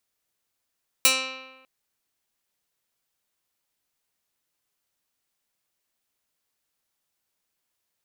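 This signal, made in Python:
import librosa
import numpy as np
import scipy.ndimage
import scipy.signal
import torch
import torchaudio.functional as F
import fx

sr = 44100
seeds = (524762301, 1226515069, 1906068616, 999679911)

y = fx.pluck(sr, length_s=0.6, note=60, decay_s=1.2, pick=0.16, brightness='medium')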